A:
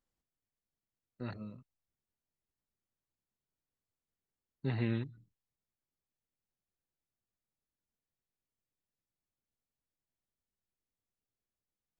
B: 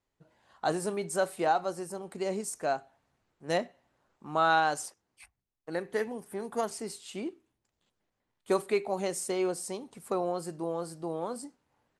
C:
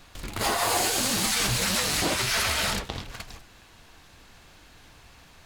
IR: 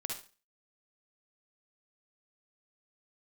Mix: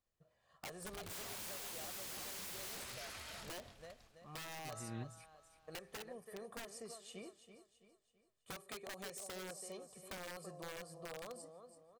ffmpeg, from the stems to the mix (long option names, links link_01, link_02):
-filter_complex "[0:a]volume=-4dB[link_01];[1:a]aecho=1:1:1.7:0.69,acompressor=threshold=-28dB:ratio=10,volume=-11.5dB,asplit=3[link_02][link_03][link_04];[link_03]volume=-12dB[link_05];[2:a]adelay=700,volume=-16dB,afade=type=out:start_time=2.66:duration=0.42:silence=0.421697,asplit=2[link_06][link_07];[link_07]volume=-19.5dB[link_08];[link_04]apad=whole_len=528792[link_09];[link_01][link_09]sidechaincompress=threshold=-59dB:ratio=8:attack=5.2:release=209[link_10];[link_02][link_06]amix=inputs=2:normalize=0,aeval=exprs='(mod(79.4*val(0)+1,2)-1)/79.4':channel_layout=same,acompressor=threshold=-45dB:ratio=6,volume=0dB[link_11];[link_05][link_08]amix=inputs=2:normalize=0,aecho=0:1:331|662|993|1324|1655|1986:1|0.4|0.16|0.064|0.0256|0.0102[link_12];[link_10][link_11][link_12]amix=inputs=3:normalize=0"